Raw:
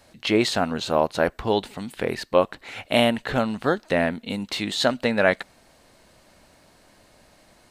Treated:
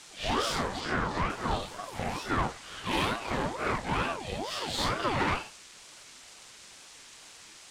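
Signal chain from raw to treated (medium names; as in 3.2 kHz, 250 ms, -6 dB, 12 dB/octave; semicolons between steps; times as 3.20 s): phase randomisation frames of 200 ms; band noise 1.2–8.4 kHz -45 dBFS; valve stage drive 20 dB, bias 0.65; 0.80–1.30 s: distance through air 55 m; ring modulator with a swept carrier 600 Hz, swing 55%, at 2.2 Hz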